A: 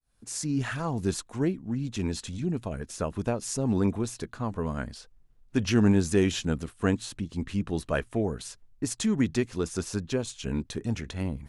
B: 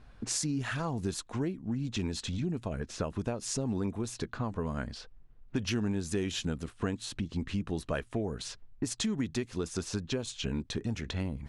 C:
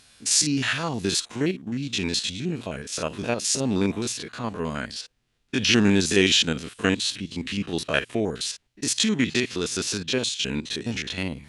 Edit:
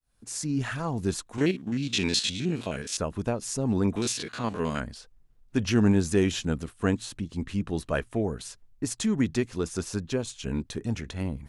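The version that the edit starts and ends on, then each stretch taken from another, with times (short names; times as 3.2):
A
1.38–2.97 from C
3.96–4.8 from C
not used: B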